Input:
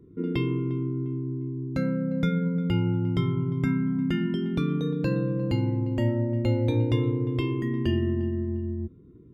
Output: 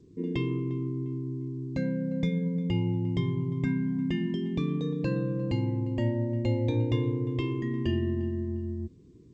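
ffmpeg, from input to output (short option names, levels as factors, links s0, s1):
-af "asuperstop=centerf=1400:order=20:qfactor=4.8,volume=0.708" -ar 16000 -c:a g722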